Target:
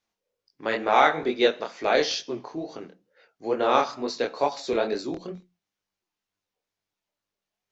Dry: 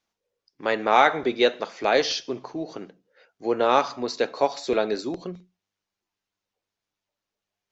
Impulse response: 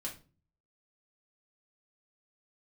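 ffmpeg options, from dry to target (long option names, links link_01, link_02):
-af "flanger=delay=20:depth=6.6:speed=2.2,volume=1.5dB"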